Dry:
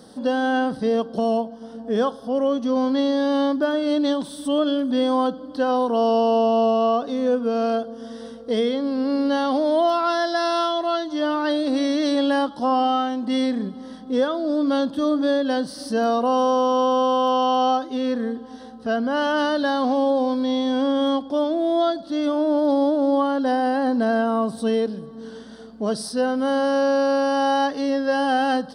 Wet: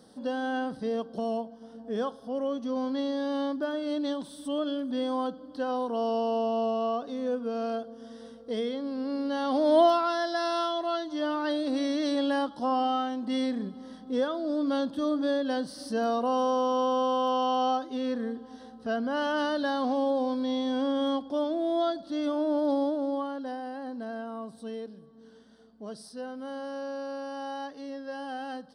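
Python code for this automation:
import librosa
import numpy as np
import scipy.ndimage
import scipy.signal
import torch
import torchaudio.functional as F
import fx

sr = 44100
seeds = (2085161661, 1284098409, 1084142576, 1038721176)

y = fx.gain(x, sr, db=fx.line((9.33, -9.5), (9.81, 0.0), (10.09, -7.0), (22.73, -7.0), (23.66, -16.5)))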